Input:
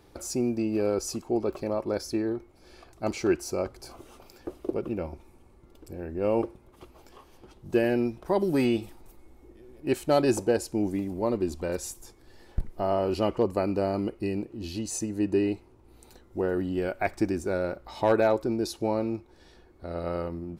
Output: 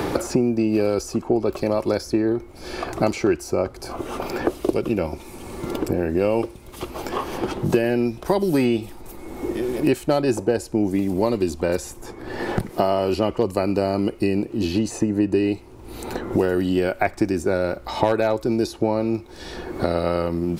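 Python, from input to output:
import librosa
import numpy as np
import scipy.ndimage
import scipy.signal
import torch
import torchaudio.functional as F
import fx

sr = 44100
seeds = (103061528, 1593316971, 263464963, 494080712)

y = fx.band_squash(x, sr, depth_pct=100)
y = y * librosa.db_to_amplitude(6.0)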